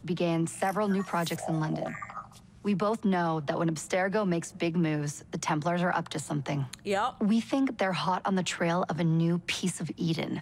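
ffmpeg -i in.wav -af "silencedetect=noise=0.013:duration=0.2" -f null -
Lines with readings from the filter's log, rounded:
silence_start: 2.25
silence_end: 2.65 | silence_duration: 0.40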